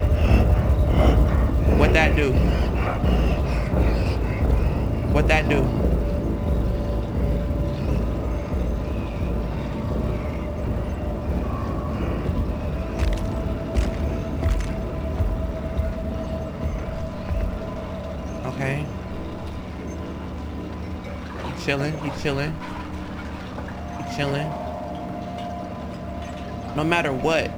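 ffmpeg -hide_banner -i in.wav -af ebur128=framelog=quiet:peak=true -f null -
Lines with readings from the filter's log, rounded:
Integrated loudness:
  I:         -24.7 LUFS
  Threshold: -34.7 LUFS
Loudness range:
  LRA:         9.3 LU
  Threshold: -45.3 LUFS
  LRA low:   -29.9 LUFS
  LRA high:  -20.6 LUFS
True peak:
  Peak:       -2.8 dBFS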